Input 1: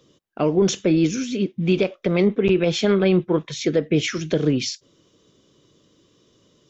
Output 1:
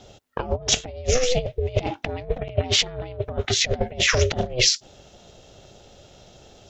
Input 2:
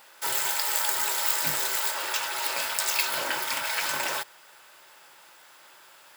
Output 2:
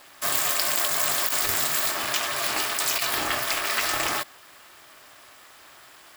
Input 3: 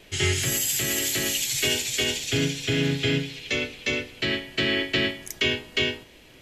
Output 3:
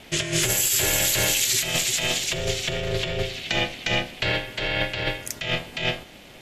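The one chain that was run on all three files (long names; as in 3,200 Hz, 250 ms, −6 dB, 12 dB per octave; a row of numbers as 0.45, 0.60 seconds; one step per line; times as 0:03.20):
compressor whose output falls as the input rises −26 dBFS, ratio −0.5
ring modulation 250 Hz
loudness normalisation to −23 LKFS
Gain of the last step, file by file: +6.0, +6.0, +6.0 decibels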